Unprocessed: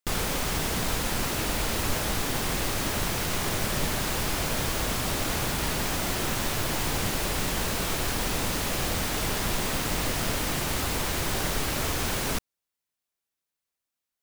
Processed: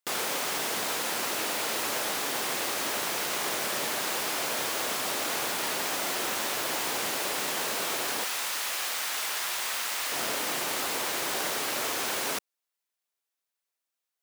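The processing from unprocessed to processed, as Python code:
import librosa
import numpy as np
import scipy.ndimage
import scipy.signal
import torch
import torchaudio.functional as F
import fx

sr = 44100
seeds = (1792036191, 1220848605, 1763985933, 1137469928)

y = fx.highpass(x, sr, hz=fx.steps((0.0, 400.0), (8.24, 990.0), (10.12, 390.0)), slope=12)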